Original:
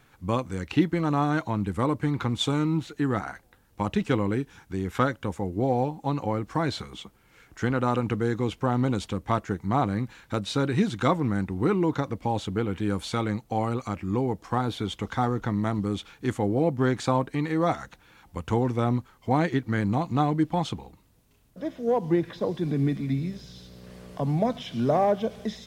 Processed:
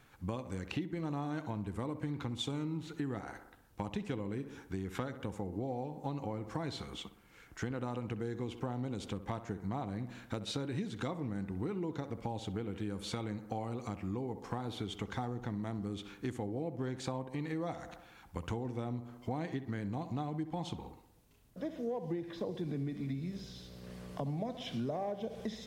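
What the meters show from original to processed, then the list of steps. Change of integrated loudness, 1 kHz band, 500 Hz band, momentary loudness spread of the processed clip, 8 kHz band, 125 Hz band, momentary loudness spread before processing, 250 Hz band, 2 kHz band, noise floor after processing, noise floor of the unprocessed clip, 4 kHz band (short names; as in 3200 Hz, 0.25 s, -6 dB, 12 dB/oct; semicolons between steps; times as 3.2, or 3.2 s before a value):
-12.5 dB, -14.5 dB, -13.0 dB, 6 LU, -8.5 dB, -11.5 dB, 8 LU, -12.0 dB, -13.0 dB, -60 dBFS, -61 dBFS, -9.0 dB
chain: on a send: tape echo 64 ms, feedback 60%, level -12 dB, low-pass 2000 Hz; on the sum: dynamic EQ 1300 Hz, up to -6 dB, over -42 dBFS, Q 1.8; compressor 6:1, threshold -31 dBFS, peak gain reduction 14.5 dB; gain -3.5 dB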